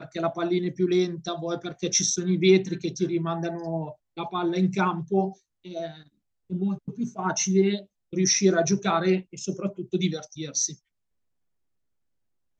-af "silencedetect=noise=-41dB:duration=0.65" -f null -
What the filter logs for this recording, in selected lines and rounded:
silence_start: 10.74
silence_end: 12.60 | silence_duration: 1.85